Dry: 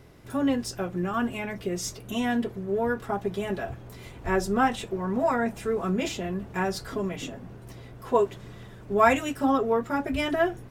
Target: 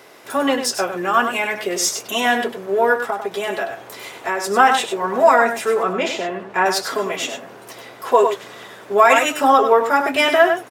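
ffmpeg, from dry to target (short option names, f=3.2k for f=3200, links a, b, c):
-filter_complex "[0:a]highpass=560,asplit=3[a][b][c];[a]afade=t=out:st=2.96:d=0.02[d];[b]acompressor=threshold=-34dB:ratio=6,afade=t=in:st=2.96:d=0.02,afade=t=out:st=4.44:d=0.02[e];[c]afade=t=in:st=4.44:d=0.02[f];[d][e][f]amix=inputs=3:normalize=0,asettb=1/sr,asplit=3[g][h][i];[g]atrim=end=5.834[j];[h]atrim=start=5.83:end=6.66,asetpts=PTS-STARTPTS,afade=t=in:d=0.004:c=qsin,afade=t=out:st=0.826:d=0.004:c=qsin,aemphasis=mode=reproduction:type=75kf[k];[i]atrim=start=6.656[l];[j][k]acrossfade=d=0.004:c1=hsin:c2=qsin[m];[m][l]acrossfade=d=0.004:c1=qsin:c2=hsin,asplit=2[n][o];[o]aecho=0:1:99:0.376[p];[n][p]amix=inputs=2:normalize=0,alimiter=level_in=15dB:limit=-1dB:release=50:level=0:latency=1,volume=-1dB"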